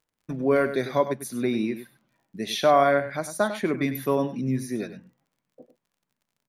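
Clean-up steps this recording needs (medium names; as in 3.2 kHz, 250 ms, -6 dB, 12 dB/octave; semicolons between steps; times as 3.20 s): de-click; inverse comb 99 ms -11.5 dB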